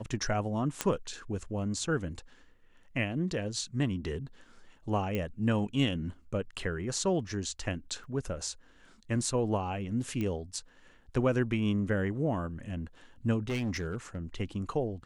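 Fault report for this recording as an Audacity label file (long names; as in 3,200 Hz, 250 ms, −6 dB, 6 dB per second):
0.810000	0.810000	click −12 dBFS
5.150000	5.150000	click −20 dBFS
8.040000	8.040000	drop-out 3.7 ms
10.210000	10.210000	click −22 dBFS
13.490000	14.170000	clipping −28.5 dBFS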